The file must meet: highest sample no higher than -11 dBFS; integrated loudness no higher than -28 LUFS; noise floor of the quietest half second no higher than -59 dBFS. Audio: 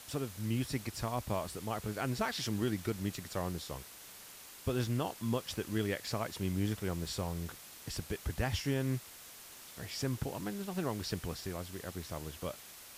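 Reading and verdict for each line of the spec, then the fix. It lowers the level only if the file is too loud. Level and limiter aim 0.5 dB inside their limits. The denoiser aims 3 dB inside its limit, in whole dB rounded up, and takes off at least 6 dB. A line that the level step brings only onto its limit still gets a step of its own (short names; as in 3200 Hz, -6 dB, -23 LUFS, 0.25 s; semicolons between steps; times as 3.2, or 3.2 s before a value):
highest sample -22.0 dBFS: OK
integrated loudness -37.5 LUFS: OK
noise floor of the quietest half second -52 dBFS: fail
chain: denoiser 10 dB, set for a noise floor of -52 dBFS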